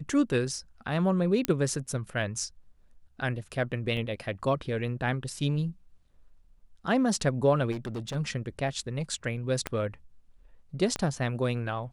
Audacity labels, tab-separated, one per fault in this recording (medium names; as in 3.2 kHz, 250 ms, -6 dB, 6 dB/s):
1.450000	1.450000	pop -10 dBFS
3.970000	3.970000	dropout 4 ms
7.710000	8.160000	clipped -30.5 dBFS
9.670000	9.670000	pop -15 dBFS
10.960000	10.960000	pop -16 dBFS